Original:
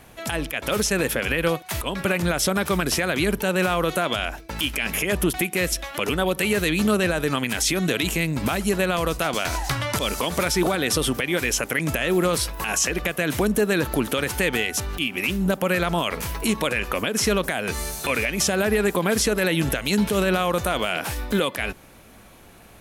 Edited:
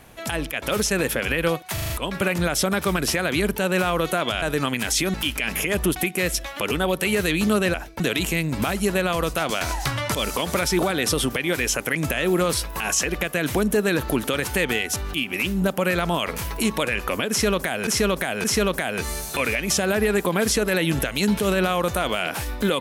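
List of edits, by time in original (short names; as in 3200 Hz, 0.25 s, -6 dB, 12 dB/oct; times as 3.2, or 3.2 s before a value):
1.74 stutter 0.04 s, 5 plays
4.26–4.52 swap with 7.12–7.84
17.14–17.71 loop, 3 plays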